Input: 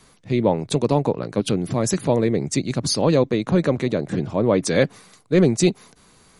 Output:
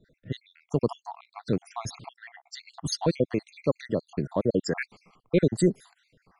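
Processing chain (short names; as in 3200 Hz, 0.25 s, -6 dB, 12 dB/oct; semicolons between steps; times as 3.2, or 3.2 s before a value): random spectral dropouts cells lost 67%; low-pass opened by the level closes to 1900 Hz, open at -20 dBFS; gain -4 dB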